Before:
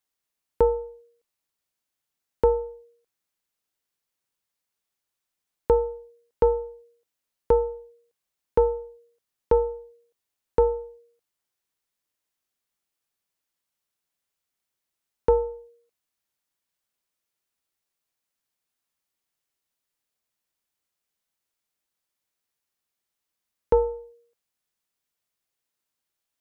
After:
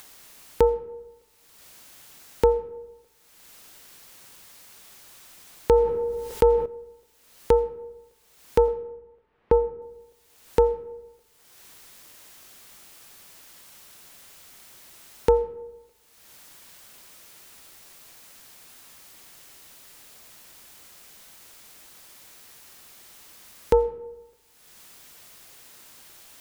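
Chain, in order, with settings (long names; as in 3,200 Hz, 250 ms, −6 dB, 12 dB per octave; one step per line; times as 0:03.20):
0:08.68–0:09.82: Bessel low-pass filter 1,600 Hz, order 4
upward compression, threshold −24 dBFS
comb and all-pass reverb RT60 1.1 s, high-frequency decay 0.45×, pre-delay 45 ms, DRR 16.5 dB
0:05.72–0:06.66: envelope flattener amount 50%
level +1 dB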